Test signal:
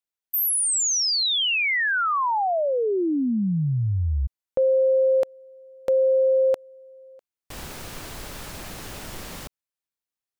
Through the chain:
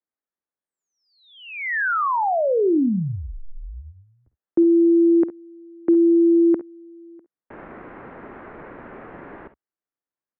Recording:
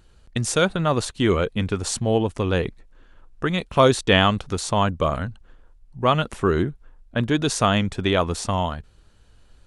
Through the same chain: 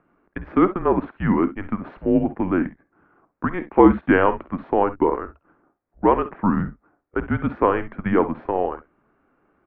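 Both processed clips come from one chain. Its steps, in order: ten-band graphic EQ 125 Hz +11 dB, 250 Hz -11 dB, 500 Hz +6 dB; mistuned SSB -190 Hz 240–2100 Hz; early reflections 52 ms -15.5 dB, 66 ms -16.5 dB; trim +1 dB

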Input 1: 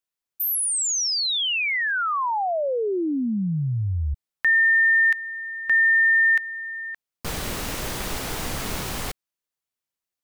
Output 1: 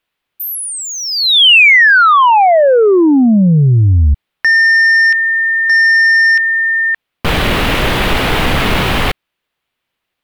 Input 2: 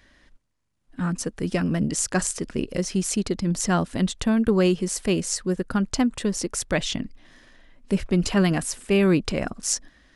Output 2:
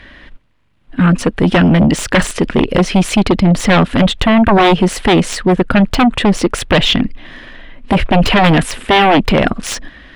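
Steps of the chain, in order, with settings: sine folder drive 14 dB, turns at -5.5 dBFS; resonant high shelf 4.4 kHz -12 dB, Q 1.5

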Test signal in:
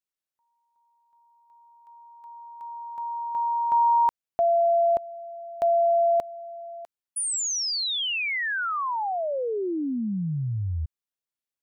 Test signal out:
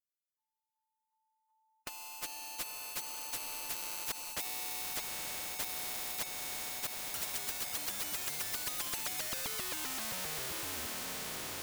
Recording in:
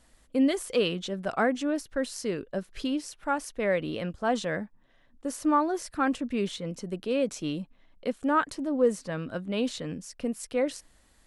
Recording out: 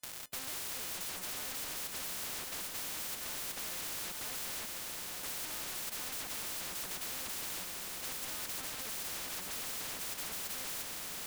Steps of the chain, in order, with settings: partials quantised in pitch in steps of 3 st; high-pass 410 Hz 6 dB/octave; gate with hold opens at -47 dBFS, range -23 dB; treble shelf 3.8 kHz +3 dB; waveshaping leveller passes 5; wavefolder -26 dBFS; echo that smears into a reverb 973 ms, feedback 47%, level -8 dB; spectrum-flattening compressor 4:1

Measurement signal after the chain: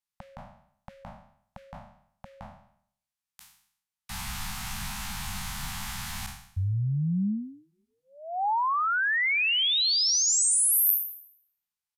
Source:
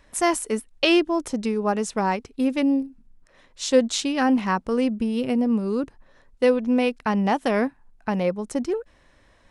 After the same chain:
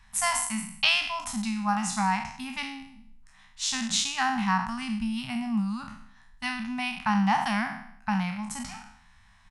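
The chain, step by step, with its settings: spectral sustain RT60 0.64 s; elliptic band-stop 210–800 Hz, stop band 50 dB; resampled via 32 kHz; trim -1.5 dB

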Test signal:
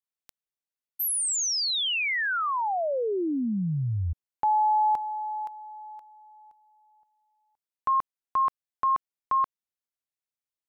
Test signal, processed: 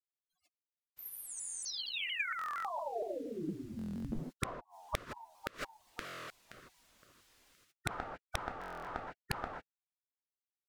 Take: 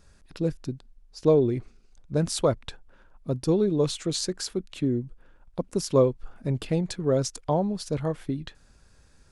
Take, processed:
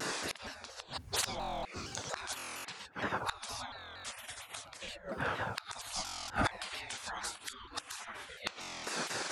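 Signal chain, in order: bass shelf 69 Hz +9 dB; reverb removal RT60 0.54 s; gated-style reverb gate 180 ms flat, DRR -1 dB; spectral gate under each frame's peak -30 dB weak; treble shelf 8.4 kHz -12 dB; inverted gate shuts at -45 dBFS, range -26 dB; sine folder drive 11 dB, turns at -36.5 dBFS; buffer glitch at 1.37/2.37/3.77/6.02/8.59 s, samples 1024, times 11; vibrato with a chosen wave saw down 4.3 Hz, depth 160 cents; trim +14.5 dB

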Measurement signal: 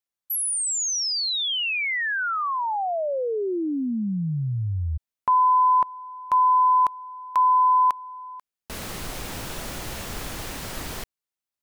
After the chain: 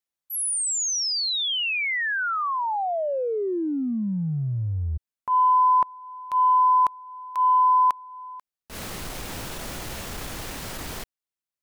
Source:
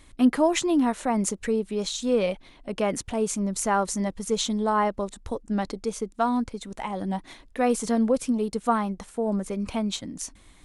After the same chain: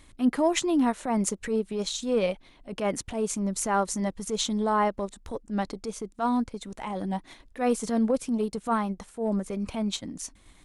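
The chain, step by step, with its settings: transient shaper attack -8 dB, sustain -4 dB

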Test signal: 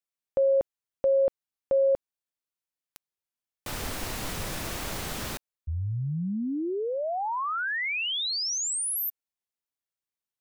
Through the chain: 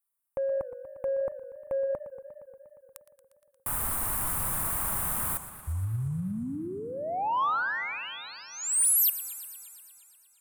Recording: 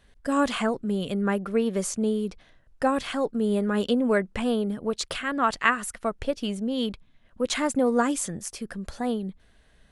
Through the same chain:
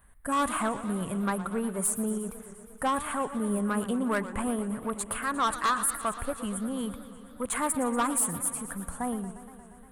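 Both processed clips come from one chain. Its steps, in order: FFT filter 120 Hz 0 dB, 480 Hz -8 dB, 1.1 kHz +6 dB, 5.4 kHz -21 dB, 9.1 kHz +12 dB; saturation -21 dBFS; modulated delay 118 ms, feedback 78%, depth 176 cents, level -14 dB

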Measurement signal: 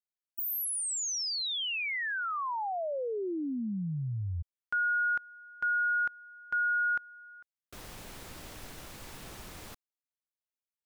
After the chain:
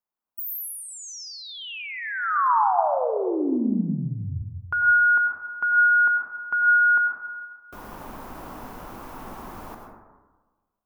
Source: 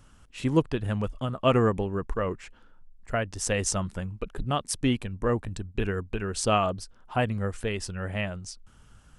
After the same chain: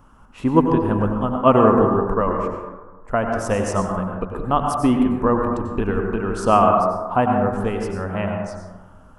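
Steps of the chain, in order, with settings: graphic EQ 125/250/1000/2000/4000/8000 Hz -3/+5/+11/-5/-8/-9 dB; plate-style reverb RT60 1.3 s, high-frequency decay 0.3×, pre-delay 80 ms, DRR 2 dB; trim +3.5 dB

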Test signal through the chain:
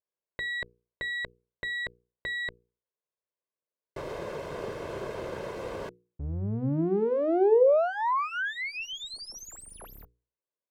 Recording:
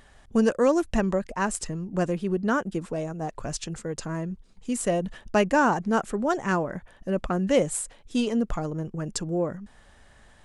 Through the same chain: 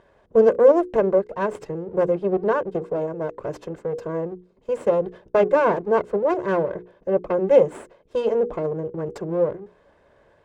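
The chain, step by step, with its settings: comb filter that takes the minimum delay 1.9 ms; band-pass filter 410 Hz, Q 1; hum notches 60/120/180/240/300/360/420/480 Hz; trim +8.5 dB

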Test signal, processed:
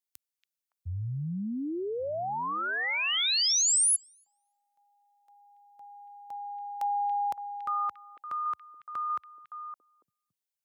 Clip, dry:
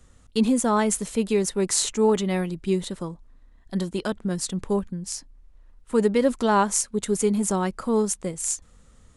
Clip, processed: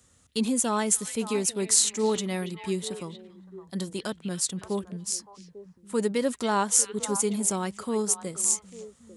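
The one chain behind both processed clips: high-pass 69 Hz 24 dB/octave; treble shelf 3.5 kHz +10.5 dB; on a send: repeats whose band climbs or falls 282 ms, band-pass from 2.6 kHz, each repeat -1.4 oct, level -7 dB; on the sum: trim -6 dB

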